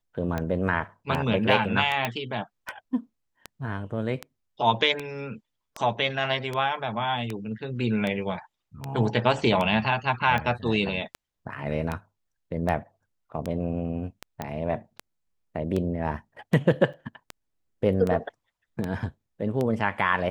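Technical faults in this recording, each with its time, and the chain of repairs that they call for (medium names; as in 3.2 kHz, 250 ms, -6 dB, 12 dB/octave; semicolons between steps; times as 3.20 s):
tick 78 rpm -16 dBFS
2.05 s: pop -11 dBFS
14.42 s: pop -17 dBFS
16.93–16.94 s: dropout 5.9 ms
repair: de-click; interpolate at 16.93 s, 5.9 ms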